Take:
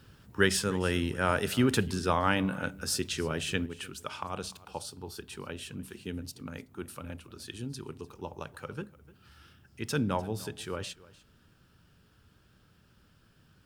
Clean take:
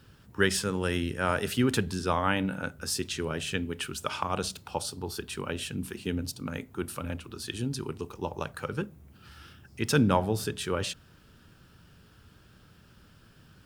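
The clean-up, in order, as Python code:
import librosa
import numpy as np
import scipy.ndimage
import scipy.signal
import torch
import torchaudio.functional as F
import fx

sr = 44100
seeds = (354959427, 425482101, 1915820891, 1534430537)

y = fx.fix_echo_inverse(x, sr, delay_ms=299, level_db=-20.5)
y = fx.fix_level(y, sr, at_s=3.66, step_db=6.5)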